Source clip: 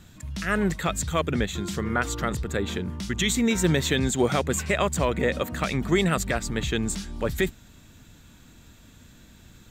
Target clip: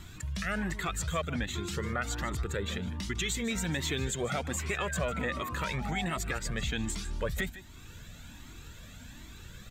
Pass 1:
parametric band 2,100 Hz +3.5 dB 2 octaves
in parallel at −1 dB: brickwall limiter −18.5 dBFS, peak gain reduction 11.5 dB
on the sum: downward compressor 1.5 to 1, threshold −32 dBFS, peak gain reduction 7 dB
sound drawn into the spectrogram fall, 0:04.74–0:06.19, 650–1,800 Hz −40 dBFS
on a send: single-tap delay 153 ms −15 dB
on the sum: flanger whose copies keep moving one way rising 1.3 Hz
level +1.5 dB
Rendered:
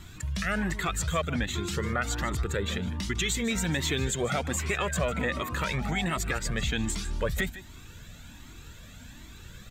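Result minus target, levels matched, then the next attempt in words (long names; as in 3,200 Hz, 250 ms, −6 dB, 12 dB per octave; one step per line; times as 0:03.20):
downward compressor: peak gain reduction −4 dB
parametric band 2,100 Hz +3.5 dB 2 octaves
in parallel at −1 dB: brickwall limiter −18.5 dBFS, peak gain reduction 11.5 dB
on the sum: downward compressor 1.5 to 1, threshold −43.5 dBFS, peak gain reduction 10.5 dB
sound drawn into the spectrogram fall, 0:04.74–0:06.19, 650–1,800 Hz −40 dBFS
on a send: single-tap delay 153 ms −15 dB
on the sum: flanger whose copies keep moving one way rising 1.3 Hz
level +1.5 dB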